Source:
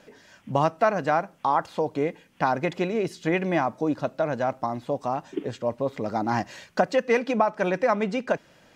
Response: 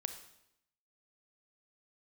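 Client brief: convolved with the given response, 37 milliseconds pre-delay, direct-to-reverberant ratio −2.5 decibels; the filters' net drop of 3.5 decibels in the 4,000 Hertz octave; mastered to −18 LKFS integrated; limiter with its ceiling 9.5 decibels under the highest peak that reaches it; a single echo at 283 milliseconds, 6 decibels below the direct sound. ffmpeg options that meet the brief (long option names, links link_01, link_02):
-filter_complex "[0:a]equalizer=frequency=4000:width_type=o:gain=-5,alimiter=limit=-16dB:level=0:latency=1,aecho=1:1:283:0.501,asplit=2[link_01][link_02];[1:a]atrim=start_sample=2205,adelay=37[link_03];[link_02][link_03]afir=irnorm=-1:irlink=0,volume=3dB[link_04];[link_01][link_04]amix=inputs=2:normalize=0,volume=5.5dB"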